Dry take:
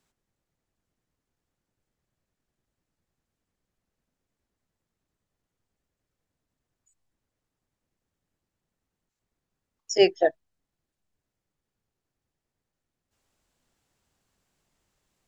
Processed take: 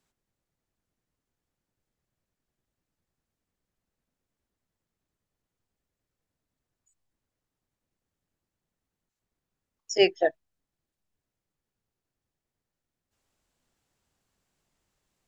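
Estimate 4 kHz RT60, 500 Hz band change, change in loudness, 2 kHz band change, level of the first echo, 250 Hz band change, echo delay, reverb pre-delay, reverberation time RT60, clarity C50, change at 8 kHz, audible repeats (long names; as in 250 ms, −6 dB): no reverb audible, −2.5 dB, −2.0 dB, +1.0 dB, no echo audible, −2.5 dB, no echo audible, no reverb audible, no reverb audible, no reverb audible, can't be measured, no echo audible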